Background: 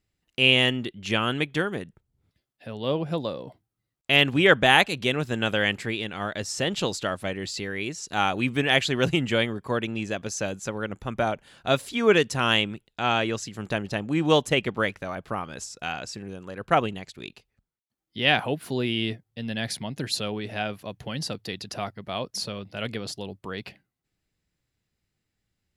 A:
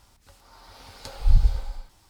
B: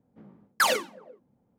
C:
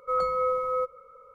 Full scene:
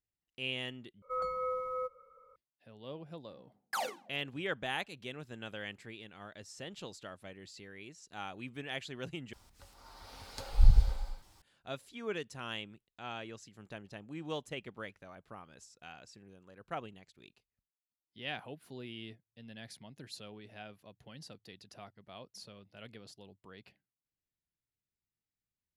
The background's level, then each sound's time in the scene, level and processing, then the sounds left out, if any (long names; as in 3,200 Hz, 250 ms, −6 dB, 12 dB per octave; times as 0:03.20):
background −19 dB
0:01.02: overwrite with C −9.5 dB
0:03.13: mix in B −15 dB + parametric band 760 Hz +13 dB 0.34 octaves
0:09.33: overwrite with A −4 dB